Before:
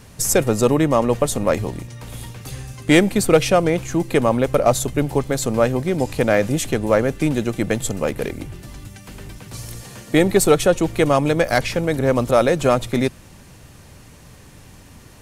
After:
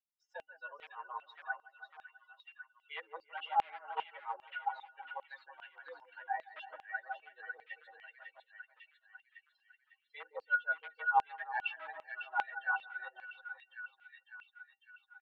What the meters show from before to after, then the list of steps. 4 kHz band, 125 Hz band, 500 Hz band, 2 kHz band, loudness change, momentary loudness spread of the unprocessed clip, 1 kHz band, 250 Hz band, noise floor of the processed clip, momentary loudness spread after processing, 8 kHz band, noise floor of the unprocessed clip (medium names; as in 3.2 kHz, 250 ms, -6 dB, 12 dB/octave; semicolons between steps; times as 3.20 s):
-24.0 dB, under -40 dB, -36.0 dB, -10.5 dB, -21.0 dB, 19 LU, -12.0 dB, under -40 dB, -80 dBFS, 21 LU, under -40 dB, -45 dBFS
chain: expander on every frequency bin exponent 3; comb 7.4 ms, depth 46%; reverse; compression 16:1, threshold -33 dBFS, peak gain reduction 23 dB; reverse; pitch-class resonator E, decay 0.12 s; overload inside the chain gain 36 dB; mistuned SSB +130 Hz 380–3400 Hz; on a send: two-band feedback delay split 1.4 kHz, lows 164 ms, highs 551 ms, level -6 dB; on the sum: LFO high-pass saw down 2.5 Hz 950–2800 Hz; tape noise reduction on one side only encoder only; trim +16.5 dB